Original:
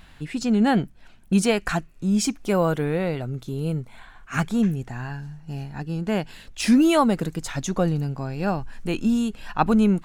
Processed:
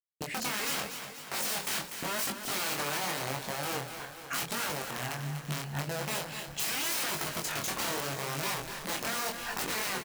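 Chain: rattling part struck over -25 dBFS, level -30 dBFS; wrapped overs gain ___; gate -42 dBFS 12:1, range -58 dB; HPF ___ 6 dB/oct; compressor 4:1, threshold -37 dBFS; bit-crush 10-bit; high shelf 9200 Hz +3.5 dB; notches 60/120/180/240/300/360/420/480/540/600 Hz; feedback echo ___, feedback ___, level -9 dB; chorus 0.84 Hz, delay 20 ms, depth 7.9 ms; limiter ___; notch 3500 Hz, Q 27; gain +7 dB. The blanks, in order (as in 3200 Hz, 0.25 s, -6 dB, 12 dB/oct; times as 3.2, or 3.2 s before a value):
23.5 dB, 180 Hz, 0.244 s, 58%, -28 dBFS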